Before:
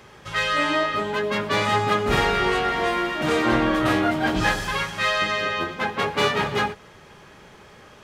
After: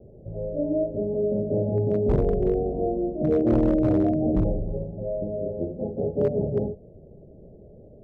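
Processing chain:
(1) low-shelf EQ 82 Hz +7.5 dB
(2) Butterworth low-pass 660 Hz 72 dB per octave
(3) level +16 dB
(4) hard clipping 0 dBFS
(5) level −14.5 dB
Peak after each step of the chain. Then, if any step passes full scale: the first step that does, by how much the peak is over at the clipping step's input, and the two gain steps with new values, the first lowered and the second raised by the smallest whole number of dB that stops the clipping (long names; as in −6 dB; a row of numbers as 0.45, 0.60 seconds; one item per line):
−7.5, −9.0, +7.0, 0.0, −14.5 dBFS
step 3, 7.0 dB
step 3 +9 dB, step 5 −7.5 dB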